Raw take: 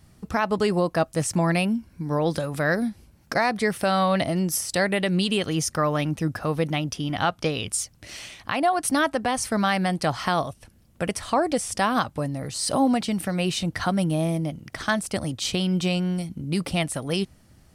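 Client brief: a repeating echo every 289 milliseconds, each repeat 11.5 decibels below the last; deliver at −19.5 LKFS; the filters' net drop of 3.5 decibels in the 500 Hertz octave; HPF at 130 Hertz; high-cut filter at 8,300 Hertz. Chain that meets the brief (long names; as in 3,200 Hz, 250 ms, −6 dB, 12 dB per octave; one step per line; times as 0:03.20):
high-pass filter 130 Hz
low-pass filter 8,300 Hz
parametric band 500 Hz −4.5 dB
repeating echo 289 ms, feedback 27%, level −11.5 dB
level +6.5 dB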